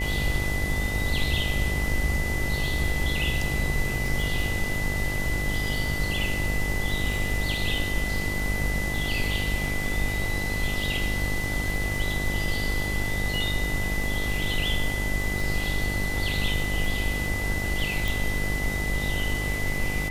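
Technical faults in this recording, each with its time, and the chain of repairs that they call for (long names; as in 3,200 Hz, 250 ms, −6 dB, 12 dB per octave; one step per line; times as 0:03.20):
mains buzz 50 Hz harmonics 18 −31 dBFS
surface crackle 41 per second −32 dBFS
whistle 2,000 Hz −30 dBFS
0:18.08: click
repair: click removal
hum removal 50 Hz, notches 18
notch filter 2,000 Hz, Q 30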